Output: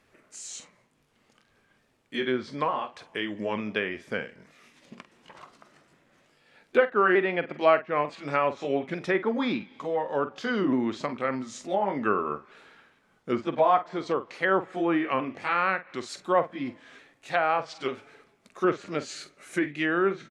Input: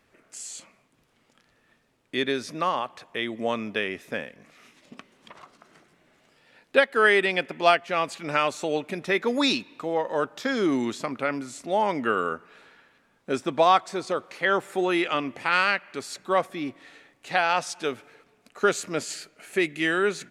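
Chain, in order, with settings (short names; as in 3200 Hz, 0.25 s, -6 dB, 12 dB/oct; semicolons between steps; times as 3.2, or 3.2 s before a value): repeated pitch sweeps -2 st, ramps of 0.894 s; doubler 47 ms -12.5 dB; treble ducked by the level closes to 1700 Hz, closed at -21.5 dBFS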